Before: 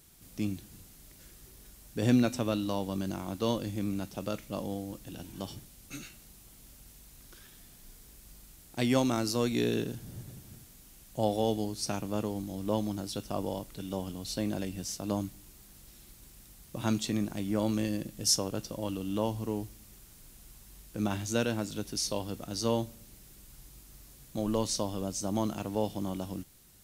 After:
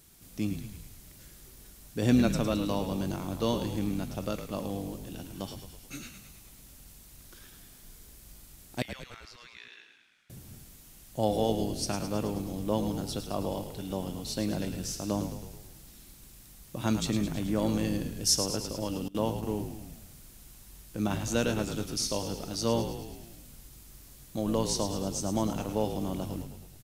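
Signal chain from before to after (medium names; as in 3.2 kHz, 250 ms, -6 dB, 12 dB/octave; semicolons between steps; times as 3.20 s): 8.82–10.30 s: ladder band-pass 2.3 kHz, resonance 35%; frequency-shifting echo 107 ms, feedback 62%, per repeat -47 Hz, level -9 dB; 19.08–19.60 s: gate with hold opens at -25 dBFS; trim +1 dB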